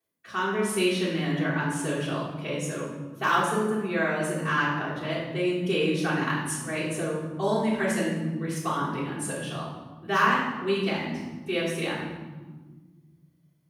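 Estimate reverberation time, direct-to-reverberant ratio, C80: 1.4 s, −10.5 dB, 4.5 dB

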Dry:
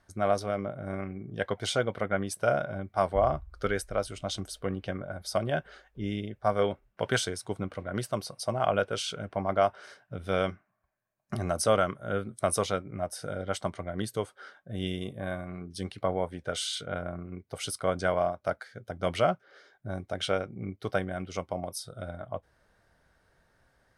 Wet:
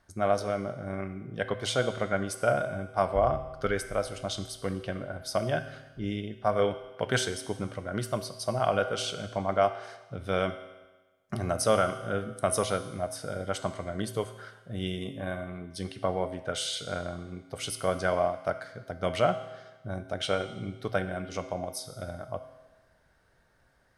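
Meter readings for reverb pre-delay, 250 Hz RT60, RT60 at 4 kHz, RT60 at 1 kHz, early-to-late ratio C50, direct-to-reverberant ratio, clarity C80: 8 ms, 1.2 s, 1.2 s, 1.2 s, 11.0 dB, 9.0 dB, 13.0 dB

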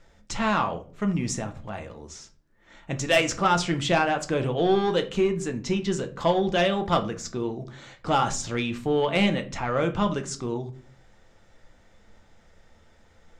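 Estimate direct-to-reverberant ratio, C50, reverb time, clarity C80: 6.0 dB, 15.0 dB, 0.40 s, 20.0 dB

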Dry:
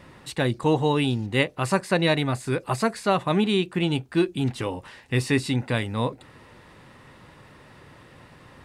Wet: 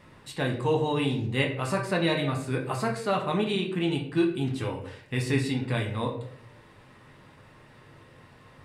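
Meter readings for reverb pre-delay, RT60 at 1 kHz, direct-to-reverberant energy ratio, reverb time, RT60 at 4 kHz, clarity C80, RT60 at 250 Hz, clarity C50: 5 ms, 0.55 s, 0.5 dB, 0.70 s, 0.40 s, 11.0 dB, 0.85 s, 7.5 dB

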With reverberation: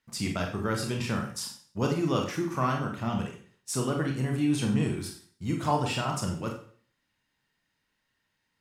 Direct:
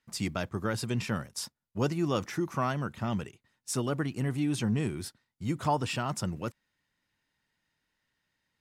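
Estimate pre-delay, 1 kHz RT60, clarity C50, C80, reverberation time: 28 ms, 0.45 s, 7.0 dB, 10.5 dB, 0.50 s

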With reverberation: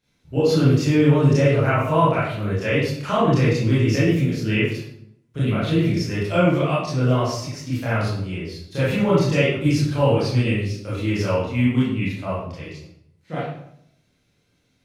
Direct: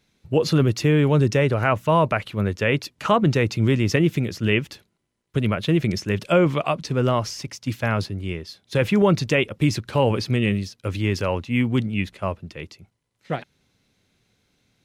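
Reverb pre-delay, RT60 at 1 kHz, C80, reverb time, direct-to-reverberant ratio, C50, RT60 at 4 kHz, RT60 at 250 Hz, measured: 23 ms, 0.65 s, 4.0 dB, 0.70 s, −10.5 dB, −1.0 dB, 0.50 s, 0.90 s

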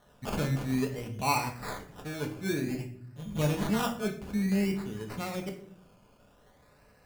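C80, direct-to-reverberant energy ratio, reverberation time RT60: 14.0 dB, 2.0 dB, 0.60 s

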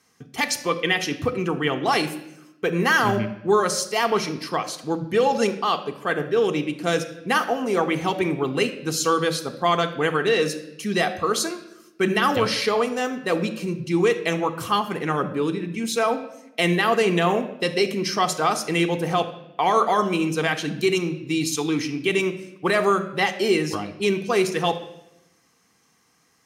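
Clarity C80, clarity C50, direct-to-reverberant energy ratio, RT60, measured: 15.0 dB, 12.5 dB, 6.5 dB, 0.85 s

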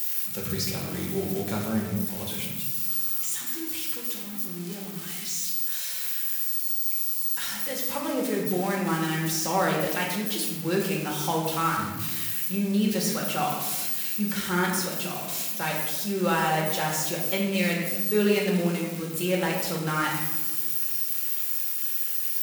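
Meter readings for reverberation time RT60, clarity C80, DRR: 1.2 s, 4.5 dB, −2.5 dB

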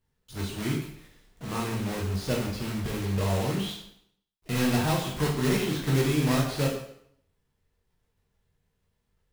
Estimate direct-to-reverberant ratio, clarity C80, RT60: −3.0 dB, 7.5 dB, 0.65 s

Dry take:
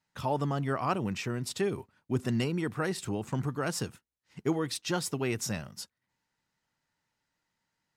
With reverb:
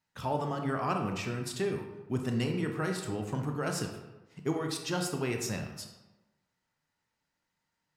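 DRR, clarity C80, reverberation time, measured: 3.0 dB, 8.0 dB, 1.1 s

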